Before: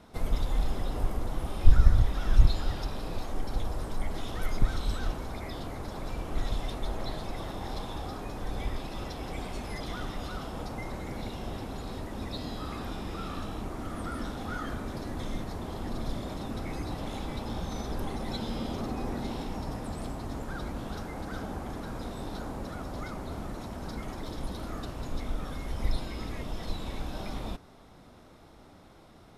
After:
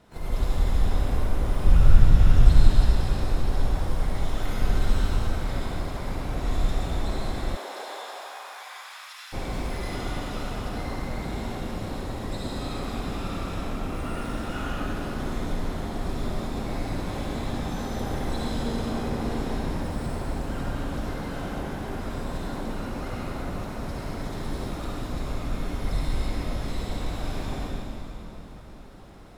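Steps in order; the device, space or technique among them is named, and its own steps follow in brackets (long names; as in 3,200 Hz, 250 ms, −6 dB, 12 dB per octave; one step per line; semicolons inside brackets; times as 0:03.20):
shimmer-style reverb (pitch-shifted copies added +12 semitones −8 dB; convolution reverb RT60 3.6 s, pre-delay 52 ms, DRR −6.5 dB)
0:07.55–0:09.32: high-pass filter 340 Hz → 1,400 Hz 24 dB per octave
level −4 dB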